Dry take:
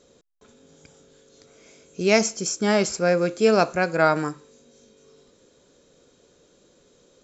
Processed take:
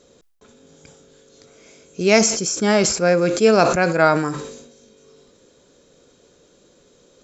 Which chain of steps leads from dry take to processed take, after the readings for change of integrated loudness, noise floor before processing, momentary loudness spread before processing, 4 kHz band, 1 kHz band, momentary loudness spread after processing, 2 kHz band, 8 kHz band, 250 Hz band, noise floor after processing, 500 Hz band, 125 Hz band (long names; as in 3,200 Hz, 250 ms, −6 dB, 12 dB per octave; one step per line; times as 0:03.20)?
+4.5 dB, −60 dBFS, 7 LU, +5.5 dB, +4.0 dB, 8 LU, +4.0 dB, can't be measured, +4.5 dB, −56 dBFS, +4.0 dB, +5.0 dB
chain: level that may fall only so fast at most 60 dB per second
level +3.5 dB